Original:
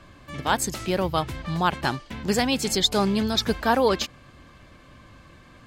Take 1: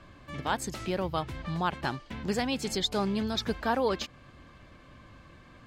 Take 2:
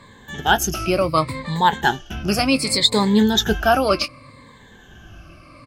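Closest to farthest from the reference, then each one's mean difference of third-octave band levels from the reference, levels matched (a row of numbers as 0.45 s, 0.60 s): 1, 2; 2.0 dB, 4.0 dB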